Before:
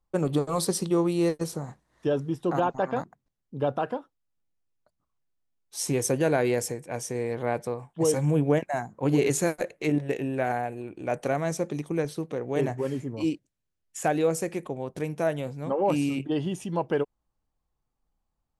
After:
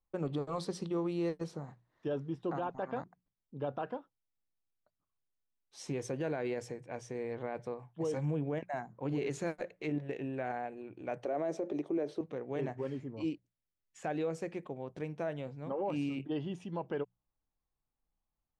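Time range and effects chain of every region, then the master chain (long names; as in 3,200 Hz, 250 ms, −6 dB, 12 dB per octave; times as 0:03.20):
0:11.25–0:12.21: high-pass filter 230 Hz + hollow resonant body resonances 370/590 Hz, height 14 dB, ringing for 20 ms
whole clip: low-pass filter 4,100 Hz 12 dB per octave; brickwall limiter −18 dBFS; mains-hum notches 60/120/180 Hz; level −8.5 dB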